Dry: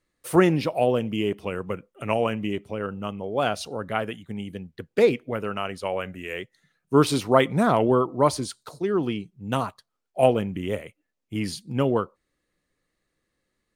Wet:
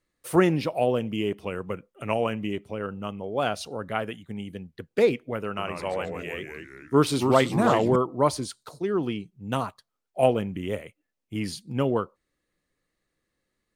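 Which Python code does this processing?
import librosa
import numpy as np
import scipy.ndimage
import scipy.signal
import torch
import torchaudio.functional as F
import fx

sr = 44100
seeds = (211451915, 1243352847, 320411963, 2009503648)

y = fx.echo_pitch(x, sr, ms=98, semitones=-2, count=3, db_per_echo=-6.0, at=(5.48, 7.96))
y = F.gain(torch.from_numpy(y), -2.0).numpy()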